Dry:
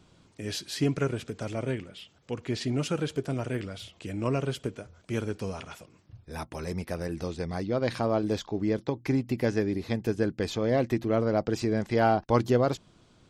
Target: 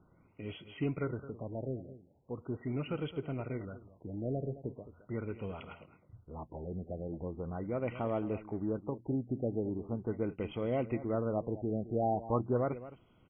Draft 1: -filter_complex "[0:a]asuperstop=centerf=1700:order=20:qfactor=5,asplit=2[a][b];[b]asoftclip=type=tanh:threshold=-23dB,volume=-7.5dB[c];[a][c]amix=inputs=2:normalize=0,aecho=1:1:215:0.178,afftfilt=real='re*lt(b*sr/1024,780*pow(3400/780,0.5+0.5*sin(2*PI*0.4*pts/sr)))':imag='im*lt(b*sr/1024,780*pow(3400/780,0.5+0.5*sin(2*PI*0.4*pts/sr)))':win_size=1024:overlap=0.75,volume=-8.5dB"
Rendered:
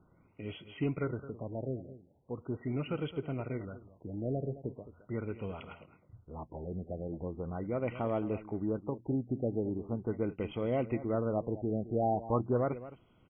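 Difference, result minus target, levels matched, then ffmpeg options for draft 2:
soft clip: distortion -7 dB
-filter_complex "[0:a]asuperstop=centerf=1700:order=20:qfactor=5,asplit=2[a][b];[b]asoftclip=type=tanh:threshold=-33.5dB,volume=-7.5dB[c];[a][c]amix=inputs=2:normalize=0,aecho=1:1:215:0.178,afftfilt=real='re*lt(b*sr/1024,780*pow(3400/780,0.5+0.5*sin(2*PI*0.4*pts/sr)))':imag='im*lt(b*sr/1024,780*pow(3400/780,0.5+0.5*sin(2*PI*0.4*pts/sr)))':win_size=1024:overlap=0.75,volume=-8.5dB"

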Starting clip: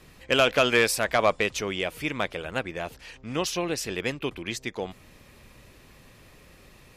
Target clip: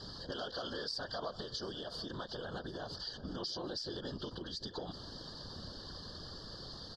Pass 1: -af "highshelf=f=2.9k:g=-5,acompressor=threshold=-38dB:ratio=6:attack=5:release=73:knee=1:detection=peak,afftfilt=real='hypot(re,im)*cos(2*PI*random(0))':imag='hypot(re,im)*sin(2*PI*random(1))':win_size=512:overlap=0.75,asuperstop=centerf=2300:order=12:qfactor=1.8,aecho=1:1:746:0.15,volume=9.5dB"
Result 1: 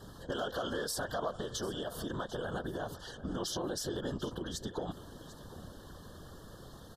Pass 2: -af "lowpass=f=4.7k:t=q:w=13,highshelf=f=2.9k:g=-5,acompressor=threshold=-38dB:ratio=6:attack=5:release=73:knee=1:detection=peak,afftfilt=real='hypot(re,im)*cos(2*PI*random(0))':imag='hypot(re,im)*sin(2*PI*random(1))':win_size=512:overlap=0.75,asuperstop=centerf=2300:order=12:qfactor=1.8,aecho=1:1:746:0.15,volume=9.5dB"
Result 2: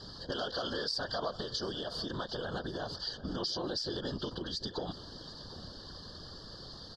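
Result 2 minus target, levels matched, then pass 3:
compressor: peak gain reduction -5 dB
-af "lowpass=f=4.7k:t=q:w=13,highshelf=f=2.9k:g=-5,acompressor=threshold=-44dB:ratio=6:attack=5:release=73:knee=1:detection=peak,afftfilt=real='hypot(re,im)*cos(2*PI*random(0))':imag='hypot(re,im)*sin(2*PI*random(1))':win_size=512:overlap=0.75,asuperstop=centerf=2300:order=12:qfactor=1.8,aecho=1:1:746:0.15,volume=9.5dB"

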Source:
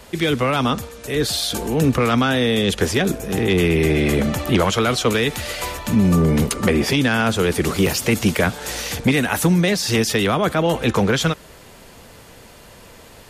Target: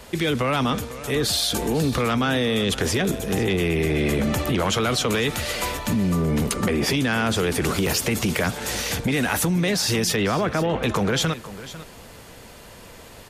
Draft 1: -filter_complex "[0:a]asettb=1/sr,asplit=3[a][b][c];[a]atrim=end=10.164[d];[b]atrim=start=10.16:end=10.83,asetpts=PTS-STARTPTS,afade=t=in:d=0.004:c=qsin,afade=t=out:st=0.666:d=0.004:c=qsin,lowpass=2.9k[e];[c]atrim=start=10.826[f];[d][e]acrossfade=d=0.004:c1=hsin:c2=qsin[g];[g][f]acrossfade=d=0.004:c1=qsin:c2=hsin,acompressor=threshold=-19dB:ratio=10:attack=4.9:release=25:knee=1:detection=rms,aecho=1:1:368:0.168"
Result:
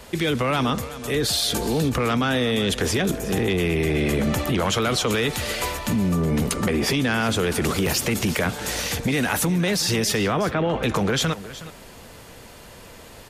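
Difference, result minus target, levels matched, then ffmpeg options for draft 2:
echo 0.13 s early
-filter_complex "[0:a]asettb=1/sr,asplit=3[a][b][c];[a]atrim=end=10.164[d];[b]atrim=start=10.16:end=10.83,asetpts=PTS-STARTPTS,afade=t=in:d=0.004:c=qsin,afade=t=out:st=0.666:d=0.004:c=qsin,lowpass=2.9k[e];[c]atrim=start=10.826[f];[d][e]acrossfade=d=0.004:c1=hsin:c2=qsin[g];[g][f]acrossfade=d=0.004:c1=qsin:c2=hsin,acompressor=threshold=-19dB:ratio=10:attack=4.9:release=25:knee=1:detection=rms,aecho=1:1:498:0.168"

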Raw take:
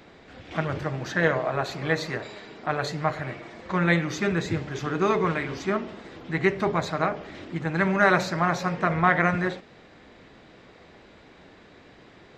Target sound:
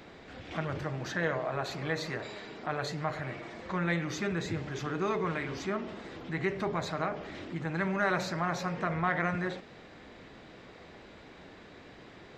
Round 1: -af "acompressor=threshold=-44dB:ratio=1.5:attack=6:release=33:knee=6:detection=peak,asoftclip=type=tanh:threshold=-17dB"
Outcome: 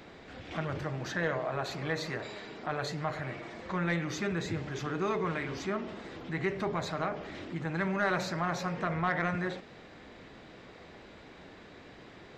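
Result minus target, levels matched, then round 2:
soft clip: distortion +13 dB
-af "acompressor=threshold=-44dB:ratio=1.5:attack=6:release=33:knee=6:detection=peak,asoftclip=type=tanh:threshold=-9.5dB"

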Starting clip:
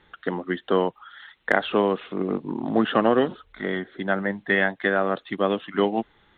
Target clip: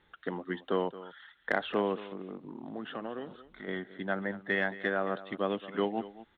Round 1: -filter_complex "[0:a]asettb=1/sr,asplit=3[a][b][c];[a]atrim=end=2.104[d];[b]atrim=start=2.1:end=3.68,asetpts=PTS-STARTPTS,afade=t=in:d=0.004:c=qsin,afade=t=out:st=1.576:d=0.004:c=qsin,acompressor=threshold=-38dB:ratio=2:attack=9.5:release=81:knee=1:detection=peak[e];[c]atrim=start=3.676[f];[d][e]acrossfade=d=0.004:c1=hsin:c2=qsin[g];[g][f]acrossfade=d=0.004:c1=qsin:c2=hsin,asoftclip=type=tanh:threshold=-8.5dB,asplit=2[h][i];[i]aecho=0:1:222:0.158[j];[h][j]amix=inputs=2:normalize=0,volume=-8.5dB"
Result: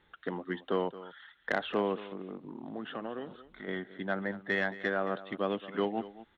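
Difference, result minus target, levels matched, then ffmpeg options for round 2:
soft clip: distortion +10 dB
-filter_complex "[0:a]asettb=1/sr,asplit=3[a][b][c];[a]atrim=end=2.104[d];[b]atrim=start=2.1:end=3.68,asetpts=PTS-STARTPTS,afade=t=in:d=0.004:c=qsin,afade=t=out:st=1.576:d=0.004:c=qsin,acompressor=threshold=-38dB:ratio=2:attack=9.5:release=81:knee=1:detection=peak[e];[c]atrim=start=3.676[f];[d][e]acrossfade=d=0.004:c1=hsin:c2=qsin[g];[g][f]acrossfade=d=0.004:c1=qsin:c2=hsin,asoftclip=type=tanh:threshold=-2dB,asplit=2[h][i];[i]aecho=0:1:222:0.158[j];[h][j]amix=inputs=2:normalize=0,volume=-8.5dB"

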